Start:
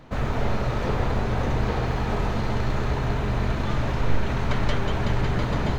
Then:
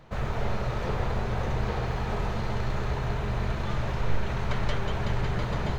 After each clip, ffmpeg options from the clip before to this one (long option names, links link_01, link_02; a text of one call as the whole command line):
ffmpeg -i in.wav -af "equalizer=frequency=270:width=5.8:gain=-13,volume=-4dB" out.wav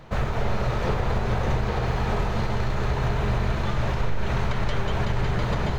ffmpeg -i in.wav -af "alimiter=limit=-21dB:level=0:latency=1:release=155,volume=6.5dB" out.wav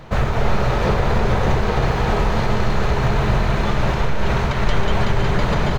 ffmpeg -i in.wav -af "aecho=1:1:321:0.447,volume=6.5dB" out.wav